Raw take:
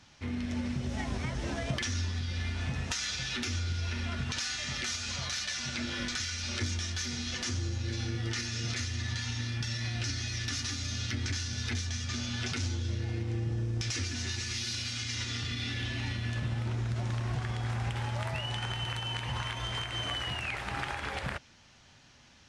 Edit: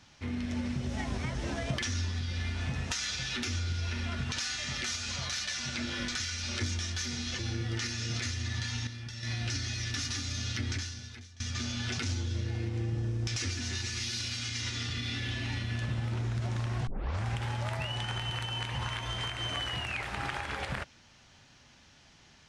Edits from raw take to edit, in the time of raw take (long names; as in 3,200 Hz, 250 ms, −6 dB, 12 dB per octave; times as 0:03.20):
0:07.39–0:07.93: remove
0:09.41–0:09.77: clip gain −7.5 dB
0:11.25–0:11.94: fade out quadratic, to −19.5 dB
0:17.41: tape start 0.37 s